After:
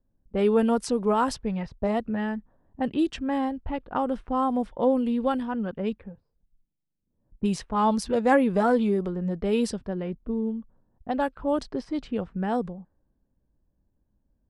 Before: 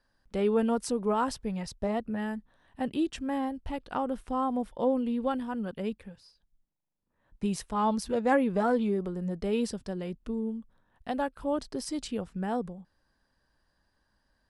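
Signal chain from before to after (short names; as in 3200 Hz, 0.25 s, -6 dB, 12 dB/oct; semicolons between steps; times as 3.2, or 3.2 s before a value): low-pass opened by the level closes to 330 Hz, open at -25 dBFS; gain +4.5 dB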